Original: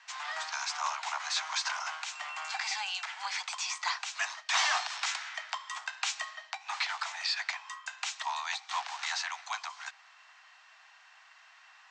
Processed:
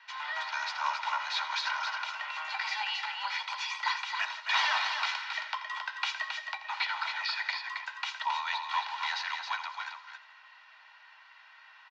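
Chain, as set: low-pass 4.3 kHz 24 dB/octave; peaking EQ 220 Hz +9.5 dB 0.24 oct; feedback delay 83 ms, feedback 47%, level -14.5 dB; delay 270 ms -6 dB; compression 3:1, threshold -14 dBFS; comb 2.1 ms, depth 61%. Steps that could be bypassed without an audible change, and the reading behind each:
peaking EQ 220 Hz: input has nothing below 570 Hz; compression, threshold -14 dBFS: peak at its input -16.0 dBFS

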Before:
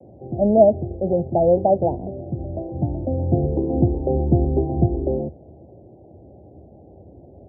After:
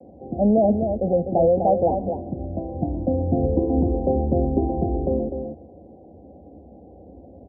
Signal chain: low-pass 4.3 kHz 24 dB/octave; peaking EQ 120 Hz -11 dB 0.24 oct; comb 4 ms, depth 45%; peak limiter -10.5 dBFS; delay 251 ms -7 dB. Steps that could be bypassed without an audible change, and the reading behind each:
low-pass 4.3 kHz: input has nothing above 810 Hz

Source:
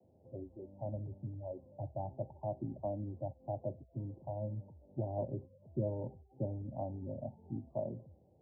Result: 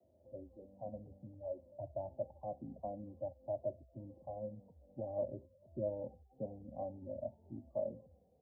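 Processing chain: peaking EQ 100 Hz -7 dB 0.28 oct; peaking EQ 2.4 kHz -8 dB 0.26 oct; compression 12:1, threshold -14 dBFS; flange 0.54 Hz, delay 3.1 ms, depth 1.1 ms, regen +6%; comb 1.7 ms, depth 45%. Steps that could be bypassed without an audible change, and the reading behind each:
peaking EQ 2.4 kHz: input has nothing above 960 Hz; compression, threshold -14 dBFS: peak at its input -24.0 dBFS

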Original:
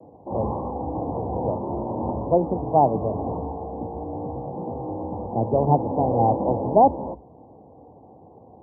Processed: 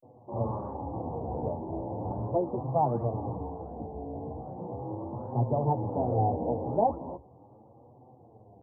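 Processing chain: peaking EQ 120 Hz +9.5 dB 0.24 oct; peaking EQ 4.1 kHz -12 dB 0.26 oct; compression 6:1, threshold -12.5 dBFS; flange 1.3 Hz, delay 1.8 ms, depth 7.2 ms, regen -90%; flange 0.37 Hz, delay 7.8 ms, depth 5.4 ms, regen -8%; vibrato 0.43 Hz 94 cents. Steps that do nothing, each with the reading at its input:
peaking EQ 4.1 kHz: input has nothing above 1.1 kHz

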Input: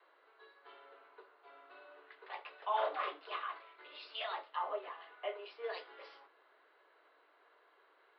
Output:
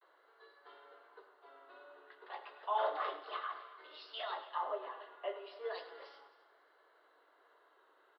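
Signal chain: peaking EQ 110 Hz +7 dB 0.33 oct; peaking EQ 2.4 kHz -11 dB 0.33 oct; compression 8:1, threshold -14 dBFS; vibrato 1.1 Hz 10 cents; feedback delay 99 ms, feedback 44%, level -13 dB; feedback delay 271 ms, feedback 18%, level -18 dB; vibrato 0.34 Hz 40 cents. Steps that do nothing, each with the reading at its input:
peaking EQ 110 Hz: input has nothing below 290 Hz; compression, threshold -14 dBFS: peak at its input -23.5 dBFS

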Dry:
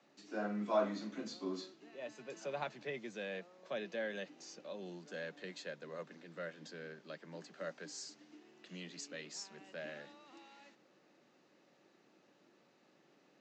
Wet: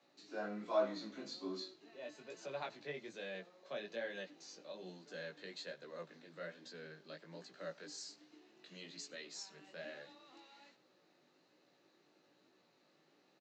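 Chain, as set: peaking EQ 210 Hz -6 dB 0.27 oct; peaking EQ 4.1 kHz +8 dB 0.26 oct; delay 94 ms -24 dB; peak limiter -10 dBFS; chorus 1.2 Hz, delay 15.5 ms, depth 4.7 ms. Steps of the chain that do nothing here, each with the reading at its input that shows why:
peak limiter -10 dBFS: peak at its input -20.5 dBFS

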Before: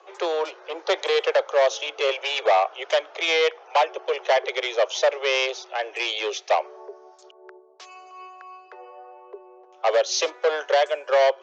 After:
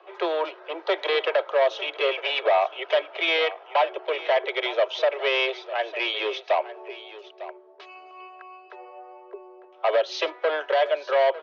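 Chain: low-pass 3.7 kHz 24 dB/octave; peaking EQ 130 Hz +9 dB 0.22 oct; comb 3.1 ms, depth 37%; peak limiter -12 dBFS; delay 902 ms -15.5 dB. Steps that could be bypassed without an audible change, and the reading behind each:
peaking EQ 130 Hz: input has nothing below 320 Hz

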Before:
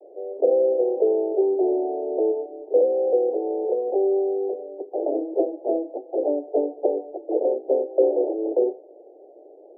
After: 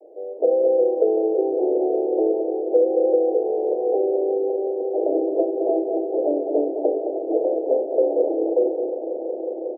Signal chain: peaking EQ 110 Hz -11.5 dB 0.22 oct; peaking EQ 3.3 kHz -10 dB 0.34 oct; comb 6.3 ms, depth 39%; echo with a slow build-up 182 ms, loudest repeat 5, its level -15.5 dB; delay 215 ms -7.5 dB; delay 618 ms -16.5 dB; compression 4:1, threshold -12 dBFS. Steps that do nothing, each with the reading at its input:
peaking EQ 110 Hz: input has nothing below 250 Hz; peaking EQ 3.3 kHz: input has nothing above 810 Hz

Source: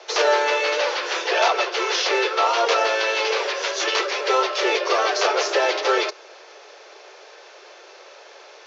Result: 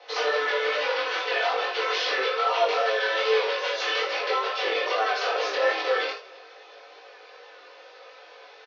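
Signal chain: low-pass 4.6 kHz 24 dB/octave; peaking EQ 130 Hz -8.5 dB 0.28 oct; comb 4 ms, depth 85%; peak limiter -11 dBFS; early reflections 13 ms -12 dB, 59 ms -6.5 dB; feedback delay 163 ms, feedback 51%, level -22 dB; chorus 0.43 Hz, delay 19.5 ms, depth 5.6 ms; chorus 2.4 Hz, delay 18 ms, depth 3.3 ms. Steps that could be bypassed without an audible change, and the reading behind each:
peaking EQ 130 Hz: input has nothing below 290 Hz

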